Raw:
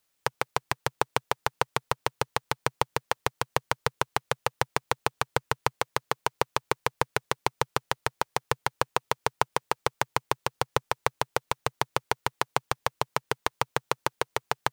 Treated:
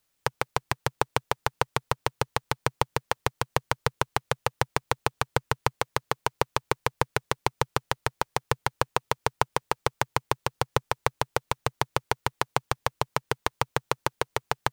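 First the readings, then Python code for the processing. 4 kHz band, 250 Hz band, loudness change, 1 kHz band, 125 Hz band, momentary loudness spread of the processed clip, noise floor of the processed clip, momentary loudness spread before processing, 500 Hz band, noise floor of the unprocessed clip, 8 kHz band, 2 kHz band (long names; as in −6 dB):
0.0 dB, +2.5 dB, +0.5 dB, 0.0 dB, +4.5 dB, 3 LU, −76 dBFS, 3 LU, +1.0 dB, −76 dBFS, 0.0 dB, 0.0 dB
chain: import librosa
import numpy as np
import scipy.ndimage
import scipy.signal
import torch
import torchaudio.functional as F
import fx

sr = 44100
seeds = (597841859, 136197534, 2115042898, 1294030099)

y = fx.low_shelf(x, sr, hz=170.0, db=7.0)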